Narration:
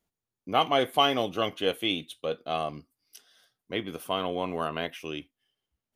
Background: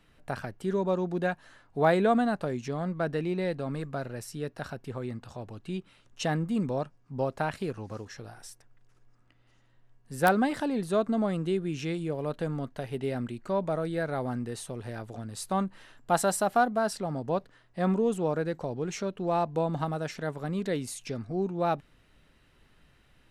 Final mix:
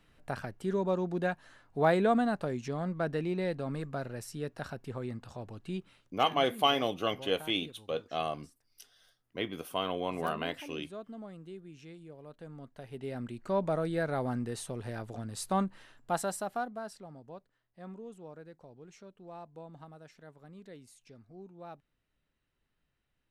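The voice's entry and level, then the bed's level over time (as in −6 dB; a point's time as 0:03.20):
5.65 s, −3.5 dB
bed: 0:05.95 −2.5 dB
0:06.19 −17.5 dB
0:12.31 −17.5 dB
0:13.58 −1 dB
0:15.61 −1 dB
0:17.43 −19.5 dB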